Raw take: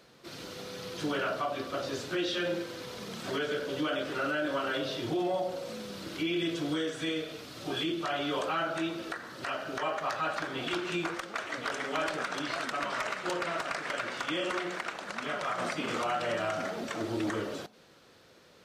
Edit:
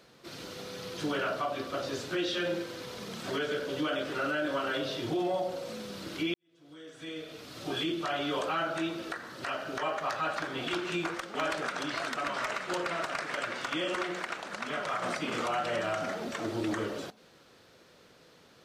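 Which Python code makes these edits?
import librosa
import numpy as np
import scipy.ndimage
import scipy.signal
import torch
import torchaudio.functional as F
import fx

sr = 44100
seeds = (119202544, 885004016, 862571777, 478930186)

y = fx.edit(x, sr, fx.fade_in_span(start_s=6.34, length_s=1.22, curve='qua'),
    fx.cut(start_s=11.35, length_s=0.56), tone=tone)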